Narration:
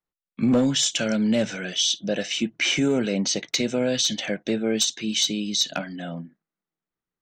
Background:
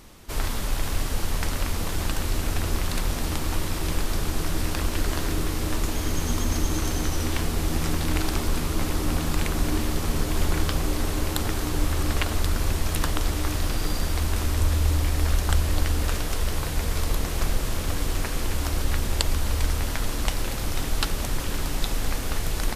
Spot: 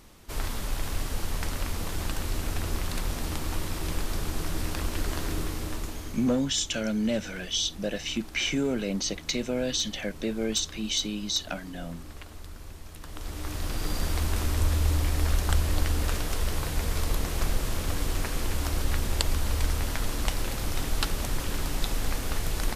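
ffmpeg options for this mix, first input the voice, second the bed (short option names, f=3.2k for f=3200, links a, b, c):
-filter_complex "[0:a]adelay=5750,volume=-5.5dB[a];[1:a]volume=12dB,afade=t=out:st=5.39:d=0.99:silence=0.188365,afade=t=in:st=13.03:d=1.03:silence=0.149624[b];[a][b]amix=inputs=2:normalize=0"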